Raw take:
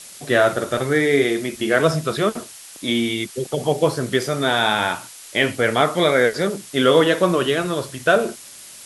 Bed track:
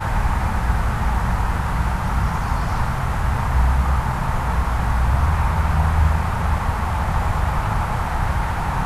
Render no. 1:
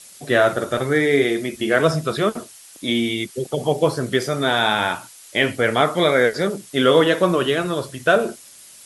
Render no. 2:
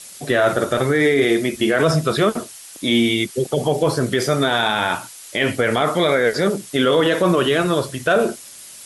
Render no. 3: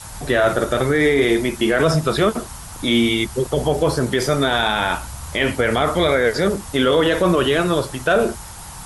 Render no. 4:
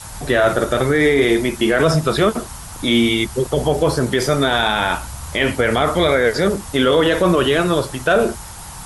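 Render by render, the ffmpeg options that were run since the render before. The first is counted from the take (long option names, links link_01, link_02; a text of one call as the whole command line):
ffmpeg -i in.wav -af "afftdn=noise_reduction=6:noise_floor=-41" out.wav
ffmpeg -i in.wav -af "alimiter=limit=-12dB:level=0:latency=1:release=28,acontrast=24" out.wav
ffmpeg -i in.wav -i bed.wav -filter_complex "[1:a]volume=-16dB[link_01];[0:a][link_01]amix=inputs=2:normalize=0" out.wav
ffmpeg -i in.wav -af "volume=1.5dB" out.wav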